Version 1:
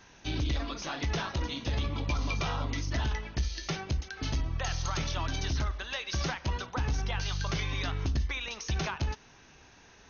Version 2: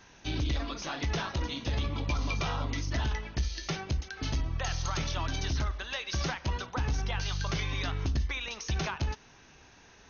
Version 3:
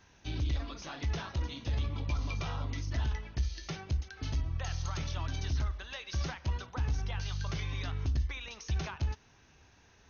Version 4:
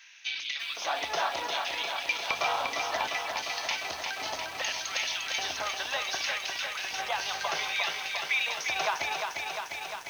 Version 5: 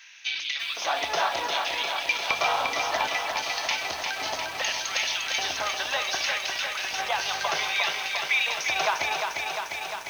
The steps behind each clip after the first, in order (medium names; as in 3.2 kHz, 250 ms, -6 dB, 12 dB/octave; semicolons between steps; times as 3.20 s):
no audible change
peaking EQ 79 Hz +8 dB 1.3 oct; trim -7 dB
LFO high-pass square 0.65 Hz 700–2300 Hz; bit-crushed delay 351 ms, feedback 80%, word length 10-bit, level -4.5 dB; trim +9 dB
reverberation RT60 2.5 s, pre-delay 20 ms, DRR 13.5 dB; trim +4 dB